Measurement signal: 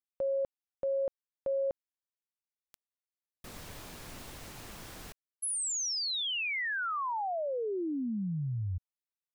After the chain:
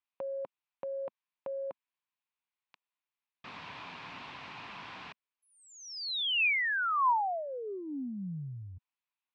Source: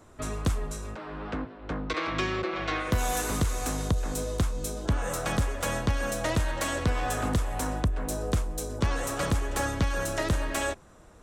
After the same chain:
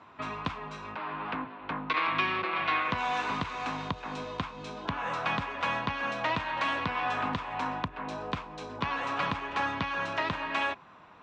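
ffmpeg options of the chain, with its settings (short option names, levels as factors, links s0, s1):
-filter_complex "[0:a]equalizer=f=460:w=3.8:g=-6.5,asplit=2[s0][s1];[s1]acompressor=threshold=0.0126:ratio=6:attack=18:release=29:knee=1:detection=rms,volume=0.841[s2];[s0][s2]amix=inputs=2:normalize=0,highpass=200,equalizer=f=220:t=q:w=4:g=-4,equalizer=f=340:t=q:w=4:g=-8,equalizer=f=580:t=q:w=4:g=-6,equalizer=f=1000:t=q:w=4:g=8,equalizer=f=2500:t=q:w=4:g=6,lowpass=f=3900:w=0.5412,lowpass=f=3900:w=1.3066,volume=0.794"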